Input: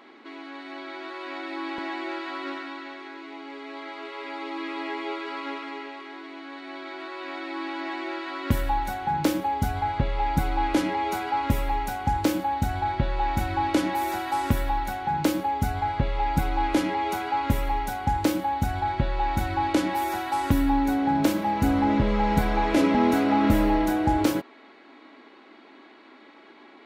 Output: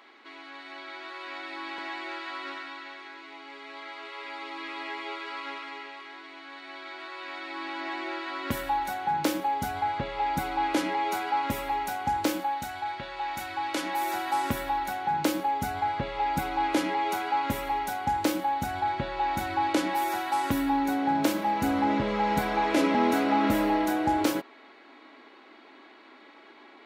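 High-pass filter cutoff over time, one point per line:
high-pass filter 6 dB per octave
0:07.37 1,000 Hz
0:07.99 410 Hz
0:12.28 410 Hz
0:12.73 1,400 Hz
0:13.64 1,400 Hz
0:14.27 350 Hz

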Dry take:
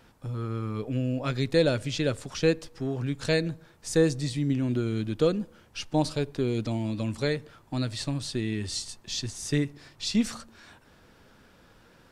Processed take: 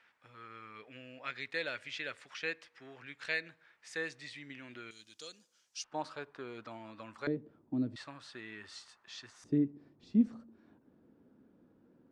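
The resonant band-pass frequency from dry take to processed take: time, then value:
resonant band-pass, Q 2.2
2,000 Hz
from 0:04.91 6,200 Hz
from 0:05.84 1,300 Hz
from 0:07.27 280 Hz
from 0:07.96 1,400 Hz
from 0:09.44 270 Hz

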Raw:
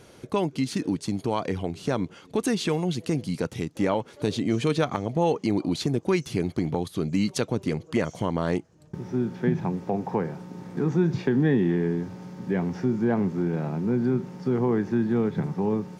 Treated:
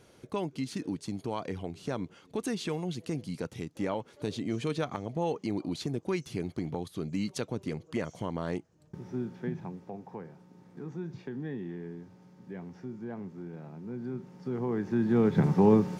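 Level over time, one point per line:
0:09.17 −8 dB
0:10.06 −16 dB
0:13.75 −16 dB
0:14.74 −7.5 dB
0:15.49 +4.5 dB

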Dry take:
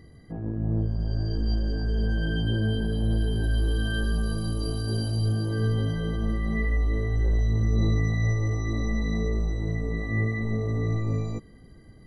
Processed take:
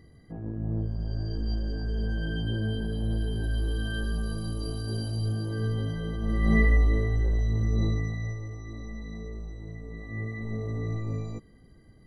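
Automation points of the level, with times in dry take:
0:06.21 −4 dB
0:06.53 +6.5 dB
0:07.31 −2.5 dB
0:07.83 −2.5 dB
0:08.49 −12 dB
0:09.84 −12 dB
0:10.60 −5 dB

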